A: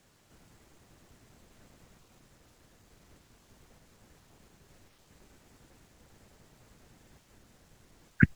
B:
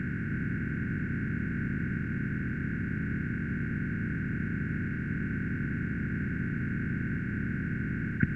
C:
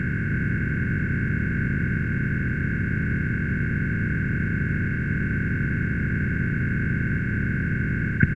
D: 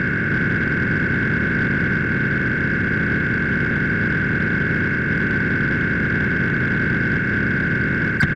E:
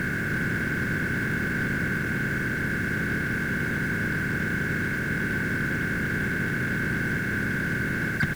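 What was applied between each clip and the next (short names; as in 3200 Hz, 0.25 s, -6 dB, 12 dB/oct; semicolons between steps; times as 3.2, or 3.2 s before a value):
per-bin compression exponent 0.2; high shelf 5100 Hz -12 dB; gain -7 dB
comb 1.9 ms, depth 39%; gain +8 dB
per-bin expansion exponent 1.5; overdrive pedal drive 29 dB, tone 1100 Hz, clips at -4 dBFS
added noise pink -36 dBFS; gain -7.5 dB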